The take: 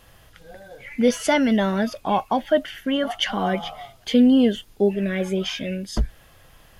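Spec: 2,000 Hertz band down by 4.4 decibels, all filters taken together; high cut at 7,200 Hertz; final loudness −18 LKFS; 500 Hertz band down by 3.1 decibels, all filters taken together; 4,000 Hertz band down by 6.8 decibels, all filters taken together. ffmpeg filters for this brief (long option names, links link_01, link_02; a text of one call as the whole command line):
ffmpeg -i in.wav -af "lowpass=7200,equalizer=frequency=500:width_type=o:gain=-3.5,equalizer=frequency=2000:width_type=o:gain=-3.5,equalizer=frequency=4000:width_type=o:gain=-8,volume=5.5dB" out.wav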